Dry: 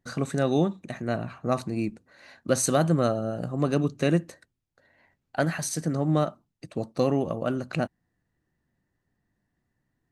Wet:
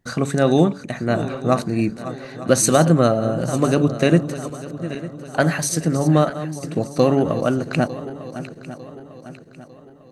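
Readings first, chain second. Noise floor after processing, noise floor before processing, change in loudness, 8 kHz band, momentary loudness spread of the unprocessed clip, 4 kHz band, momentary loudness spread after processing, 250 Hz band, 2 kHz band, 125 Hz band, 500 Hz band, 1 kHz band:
−44 dBFS, −79 dBFS, +7.5 dB, +8.5 dB, 10 LU, +8.5 dB, 16 LU, +8.0 dB, +8.5 dB, +8.0 dB, +8.0 dB, +8.0 dB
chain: feedback delay that plays each chunk backwards 450 ms, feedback 66%, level −13 dB
hum removal 142.4 Hz, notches 6
level +8 dB

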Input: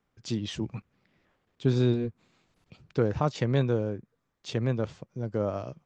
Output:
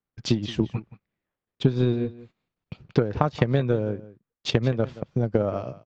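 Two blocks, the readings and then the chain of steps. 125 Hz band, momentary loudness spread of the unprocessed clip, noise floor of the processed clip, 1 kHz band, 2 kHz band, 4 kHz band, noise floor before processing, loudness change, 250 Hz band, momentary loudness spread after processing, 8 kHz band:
+3.5 dB, 12 LU, below −85 dBFS, +5.0 dB, +5.0 dB, +6.5 dB, −78 dBFS, +4.0 dB, +4.0 dB, 9 LU, can't be measured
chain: noise gate −58 dBFS, range −19 dB
transient designer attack +10 dB, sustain −2 dB
low-pass filter 4,400 Hz 12 dB per octave
downward compressor 6 to 1, threshold −21 dBFS, peak gain reduction 11 dB
on a send: single-tap delay 175 ms −17.5 dB
on the sum: level +4.5 dB

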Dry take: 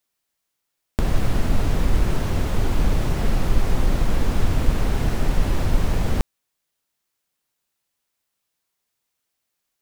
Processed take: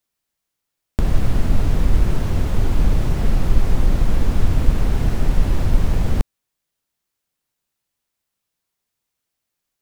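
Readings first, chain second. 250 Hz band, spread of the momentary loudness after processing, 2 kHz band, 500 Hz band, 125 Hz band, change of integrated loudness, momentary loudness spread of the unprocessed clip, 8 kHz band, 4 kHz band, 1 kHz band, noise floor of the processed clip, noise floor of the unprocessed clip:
+1.5 dB, 3 LU, −2.0 dB, −0.5 dB, +3.0 dB, +2.5 dB, 2 LU, −2.0 dB, −2.0 dB, −1.5 dB, −80 dBFS, −79 dBFS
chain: low-shelf EQ 250 Hz +6 dB
level −2 dB

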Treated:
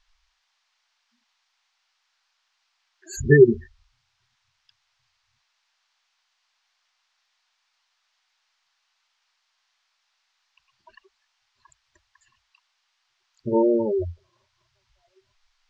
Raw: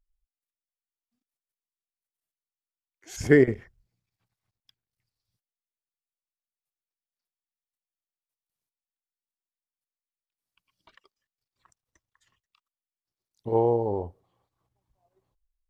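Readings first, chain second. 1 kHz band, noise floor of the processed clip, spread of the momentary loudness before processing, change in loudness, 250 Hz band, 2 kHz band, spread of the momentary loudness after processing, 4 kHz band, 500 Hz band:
−2.5 dB, −74 dBFS, 22 LU, +4.0 dB, +4.0 dB, +3.5 dB, 21 LU, can't be measured, +4.5 dB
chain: EQ curve with evenly spaced ripples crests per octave 1.4, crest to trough 13 dB
gate on every frequency bin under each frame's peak −10 dB strong
noise in a band 790–5,700 Hz −78 dBFS
level +4.5 dB

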